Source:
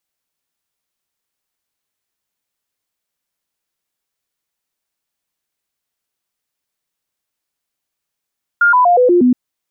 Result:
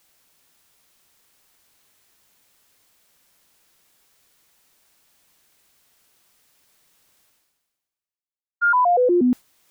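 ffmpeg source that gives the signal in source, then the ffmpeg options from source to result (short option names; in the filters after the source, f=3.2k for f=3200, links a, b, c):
-f lavfi -i "aevalsrc='0.447*clip(min(mod(t,0.12),0.12-mod(t,0.12))/0.005,0,1)*sin(2*PI*1410*pow(2,-floor(t/0.12)/2)*mod(t,0.12))':d=0.72:s=44100"
-af "agate=range=-33dB:threshold=-5dB:ratio=3:detection=peak,areverse,acompressor=mode=upward:threshold=-24dB:ratio=2.5,areverse"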